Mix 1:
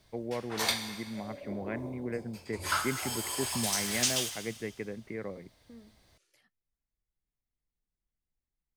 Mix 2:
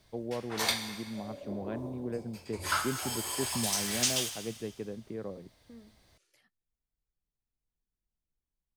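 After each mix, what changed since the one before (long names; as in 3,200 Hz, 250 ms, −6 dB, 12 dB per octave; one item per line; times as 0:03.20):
first voice: remove low-pass with resonance 2,100 Hz, resonance Q 8.2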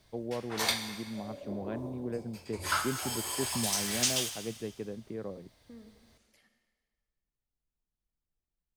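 second voice: send on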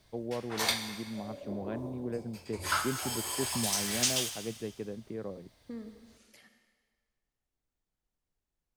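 second voice +8.5 dB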